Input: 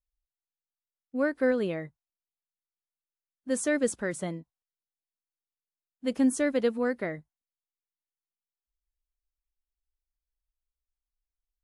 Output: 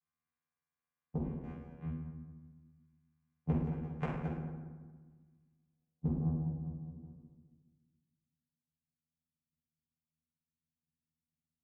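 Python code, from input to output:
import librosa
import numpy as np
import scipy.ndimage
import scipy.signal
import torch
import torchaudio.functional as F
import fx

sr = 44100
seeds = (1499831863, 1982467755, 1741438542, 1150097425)

y = fx.pitch_trill(x, sr, semitones=-7.5, every_ms=238)
y = fx.filter_sweep_lowpass(y, sr, from_hz=2000.0, to_hz=180.0, start_s=5.05, end_s=6.61, q=4.4)
y = fx.vocoder(y, sr, bands=4, carrier='saw', carrier_hz=80.6)
y = fx.gate_flip(y, sr, shuts_db=-27.0, range_db=-34)
y = fx.rev_fdn(y, sr, rt60_s=1.4, lf_ratio=1.4, hf_ratio=0.55, size_ms=39.0, drr_db=-8.5)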